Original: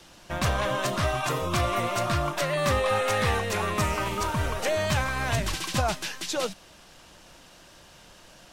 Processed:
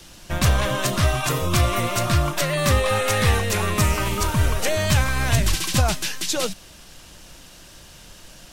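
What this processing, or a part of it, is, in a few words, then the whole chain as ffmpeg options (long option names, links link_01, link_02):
smiley-face EQ: -af "lowshelf=frequency=92:gain=7.5,equalizer=frequency=830:width_type=o:width=1.9:gain=-4.5,highshelf=frequency=7900:gain=7.5,volume=5.5dB"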